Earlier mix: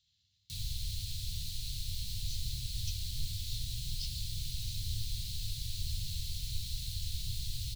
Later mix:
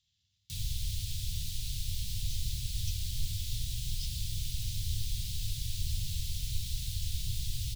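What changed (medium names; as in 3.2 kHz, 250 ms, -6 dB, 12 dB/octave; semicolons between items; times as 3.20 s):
background +3.5 dB; master: add peaking EQ 4.2 kHz -7.5 dB 0.25 oct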